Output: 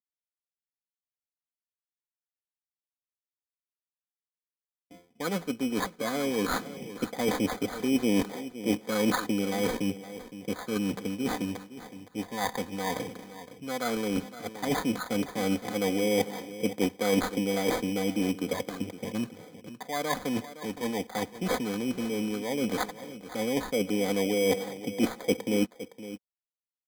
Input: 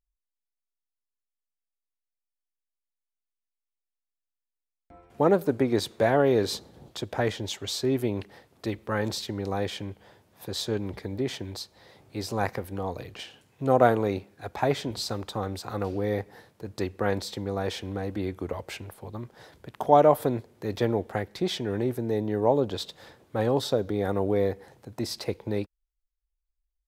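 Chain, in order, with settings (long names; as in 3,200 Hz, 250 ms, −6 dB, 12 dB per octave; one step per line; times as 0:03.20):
noise gate with hold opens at −45 dBFS
high-pass filter 140 Hz 24 dB per octave
low-pass that shuts in the quiet parts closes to 370 Hz, open at −22.5 dBFS
high-shelf EQ 10,000 Hz +5.5 dB
comb filter 4 ms, depth 60%
reversed playback
downward compressor 12 to 1, threshold −34 dBFS, peak gain reduction 22.5 dB
reversed playback
phase shifter 0.12 Hz, delay 1.1 ms, feedback 45%
decimation without filtering 16×
on a send: single-tap delay 514 ms −14 dB
on the sum: level +7.5 dB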